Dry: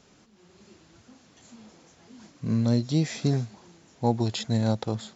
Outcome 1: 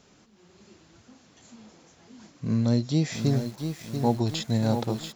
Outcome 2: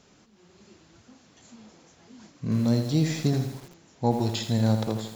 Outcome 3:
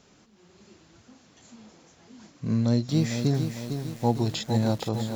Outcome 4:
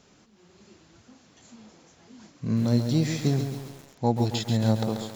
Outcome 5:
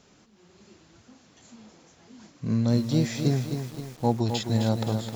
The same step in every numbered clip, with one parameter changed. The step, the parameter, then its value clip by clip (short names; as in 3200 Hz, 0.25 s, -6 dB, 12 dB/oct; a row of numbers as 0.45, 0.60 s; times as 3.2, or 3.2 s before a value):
lo-fi delay, time: 688, 82, 454, 136, 260 ms